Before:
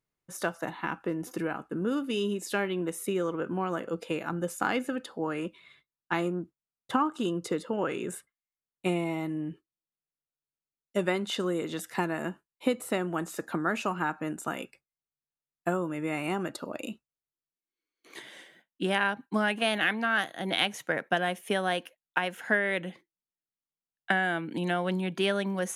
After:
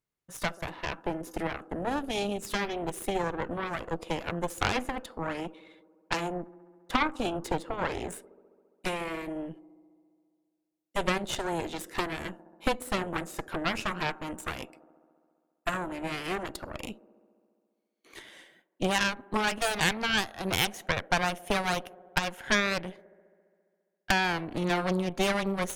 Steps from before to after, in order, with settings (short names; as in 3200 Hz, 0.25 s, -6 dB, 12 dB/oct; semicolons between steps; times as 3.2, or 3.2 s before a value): band-limited delay 68 ms, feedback 80%, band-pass 460 Hz, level -19 dB; added harmonics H 8 -10 dB, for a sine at -9 dBFS; gain -2.5 dB